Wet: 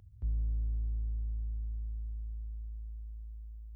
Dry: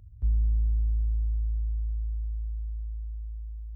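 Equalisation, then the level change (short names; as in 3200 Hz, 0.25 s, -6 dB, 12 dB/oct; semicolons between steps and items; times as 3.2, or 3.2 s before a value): HPF 130 Hz 6 dB/oct; 0.0 dB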